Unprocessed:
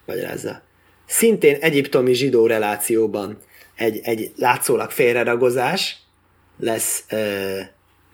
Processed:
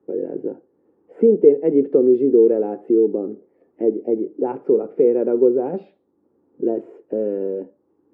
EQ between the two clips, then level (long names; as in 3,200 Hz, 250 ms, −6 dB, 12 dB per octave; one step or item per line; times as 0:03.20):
flat-topped band-pass 340 Hz, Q 1.2
high-frequency loss of the air 69 metres
+3.0 dB